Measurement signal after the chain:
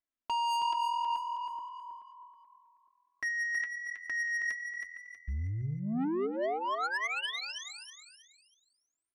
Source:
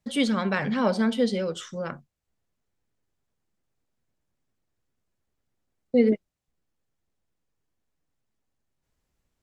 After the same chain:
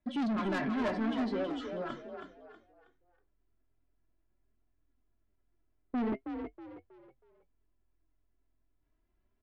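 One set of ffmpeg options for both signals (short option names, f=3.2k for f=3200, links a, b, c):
-filter_complex "[0:a]lowpass=2.3k,equalizer=f=190:t=o:w=1.4:g=6,aecho=1:1:3:0.85,flanger=delay=3.4:depth=4.4:regen=55:speed=0.41:shape=triangular,asoftclip=type=tanh:threshold=-28dB,asplit=5[a][b][c][d][e];[b]adelay=320,afreqshift=42,volume=-7dB[f];[c]adelay=640,afreqshift=84,volume=-16.6dB[g];[d]adelay=960,afreqshift=126,volume=-26.3dB[h];[e]adelay=1280,afreqshift=168,volume=-35.9dB[i];[a][f][g][h][i]amix=inputs=5:normalize=0,volume=-1.5dB"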